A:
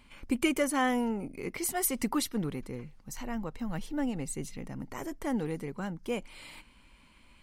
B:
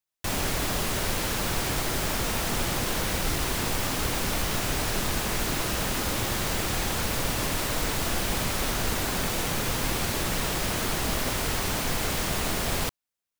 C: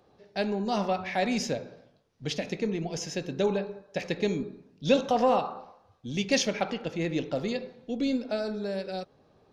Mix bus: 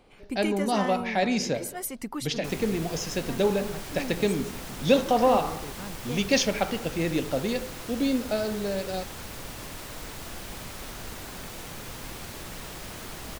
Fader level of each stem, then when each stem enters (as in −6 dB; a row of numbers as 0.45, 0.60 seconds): −4.5, −11.5, +2.5 decibels; 0.00, 2.20, 0.00 seconds